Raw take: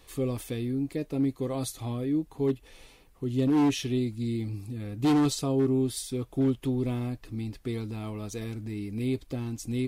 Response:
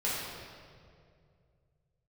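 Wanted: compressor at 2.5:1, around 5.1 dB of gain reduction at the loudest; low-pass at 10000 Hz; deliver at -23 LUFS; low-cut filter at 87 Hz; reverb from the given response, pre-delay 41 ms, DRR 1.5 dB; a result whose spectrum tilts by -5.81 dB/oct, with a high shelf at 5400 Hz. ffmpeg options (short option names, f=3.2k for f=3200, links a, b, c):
-filter_complex "[0:a]highpass=87,lowpass=10k,highshelf=f=5.4k:g=8,acompressor=threshold=-28dB:ratio=2.5,asplit=2[a][b];[1:a]atrim=start_sample=2205,adelay=41[c];[b][c]afir=irnorm=-1:irlink=0,volume=-9.5dB[d];[a][d]amix=inputs=2:normalize=0,volume=7.5dB"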